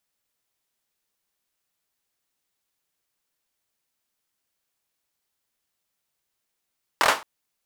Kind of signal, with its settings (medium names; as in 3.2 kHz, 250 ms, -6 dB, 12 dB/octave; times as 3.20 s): hand clap length 0.22 s, apart 24 ms, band 990 Hz, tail 0.27 s